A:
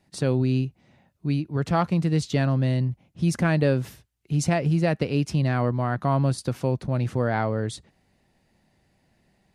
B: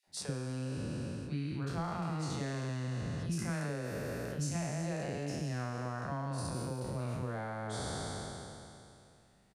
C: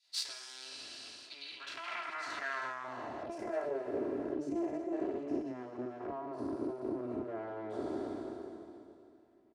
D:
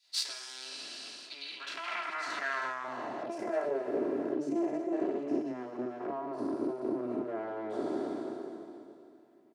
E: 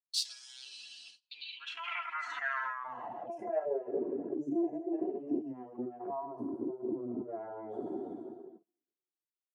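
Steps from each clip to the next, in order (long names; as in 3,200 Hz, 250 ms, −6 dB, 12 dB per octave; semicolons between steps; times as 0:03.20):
peak hold with a decay on every bin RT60 2.65 s; downward compressor 10 to 1, threshold −27 dBFS, peak gain reduction 13.5 dB; three-band delay without the direct sound highs, mids, lows 30/70 ms, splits 490/2,500 Hz; level −5.5 dB
lower of the sound and its delayed copy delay 3 ms; low-shelf EQ 330 Hz −4.5 dB; band-pass filter sweep 4,200 Hz → 340 Hz, 0:01.35–0:04.10; level +12.5 dB
high-pass filter 140 Hz 24 dB per octave; level +4 dB
spectral dynamics exaggerated over time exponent 2; noise gate −59 dBFS, range −28 dB; in parallel at 0 dB: downward compressor, threshold −45 dBFS, peak gain reduction 15 dB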